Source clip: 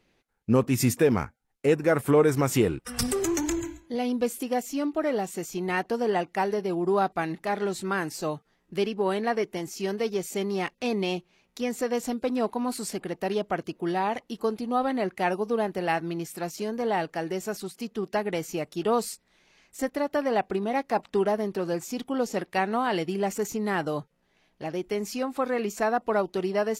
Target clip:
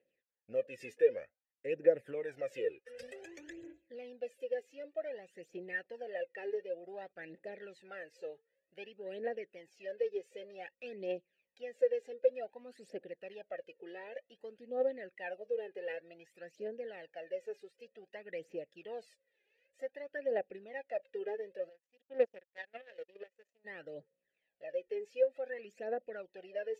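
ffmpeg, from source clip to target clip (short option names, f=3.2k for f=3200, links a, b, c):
-filter_complex "[0:a]aphaser=in_gain=1:out_gain=1:delay=2.5:decay=0.72:speed=0.54:type=triangular,asplit=3[a][b][c];[a]afade=t=out:st=21.68:d=0.02[d];[b]aeval=exprs='0.562*(cos(1*acos(clip(val(0)/0.562,-1,1)))-cos(1*PI/2))+0.0794*(cos(7*acos(clip(val(0)/0.562,-1,1)))-cos(7*PI/2))':c=same,afade=t=in:st=21.68:d=0.02,afade=t=out:st=23.64:d=0.02[e];[c]afade=t=in:st=23.64:d=0.02[f];[d][e][f]amix=inputs=3:normalize=0,asplit=3[g][h][i];[g]bandpass=f=530:t=q:w=8,volume=0dB[j];[h]bandpass=f=1.84k:t=q:w=8,volume=-6dB[k];[i]bandpass=f=2.48k:t=q:w=8,volume=-9dB[l];[j][k][l]amix=inputs=3:normalize=0,volume=-6.5dB"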